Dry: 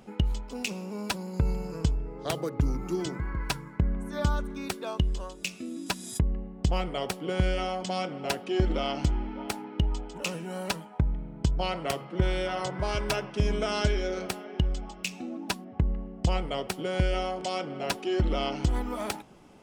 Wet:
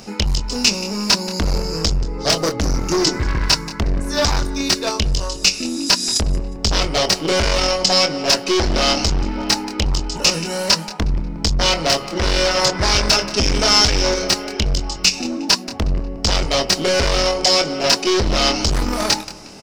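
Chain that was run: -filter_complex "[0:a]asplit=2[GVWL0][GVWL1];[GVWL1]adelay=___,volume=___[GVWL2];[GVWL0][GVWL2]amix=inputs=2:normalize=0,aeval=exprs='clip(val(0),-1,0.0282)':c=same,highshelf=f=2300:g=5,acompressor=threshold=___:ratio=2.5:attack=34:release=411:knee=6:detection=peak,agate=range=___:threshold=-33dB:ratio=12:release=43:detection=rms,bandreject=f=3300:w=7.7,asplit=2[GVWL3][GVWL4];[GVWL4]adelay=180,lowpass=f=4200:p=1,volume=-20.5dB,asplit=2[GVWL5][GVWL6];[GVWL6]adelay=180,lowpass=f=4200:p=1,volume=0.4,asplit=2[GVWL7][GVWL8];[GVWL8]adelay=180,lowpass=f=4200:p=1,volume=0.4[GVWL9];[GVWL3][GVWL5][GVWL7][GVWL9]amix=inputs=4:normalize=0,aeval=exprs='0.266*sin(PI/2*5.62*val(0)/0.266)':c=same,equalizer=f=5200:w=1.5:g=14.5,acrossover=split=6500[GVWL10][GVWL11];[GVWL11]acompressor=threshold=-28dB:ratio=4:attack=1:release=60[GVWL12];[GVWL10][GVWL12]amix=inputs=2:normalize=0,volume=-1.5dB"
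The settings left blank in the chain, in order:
25, -5dB, -29dB, -6dB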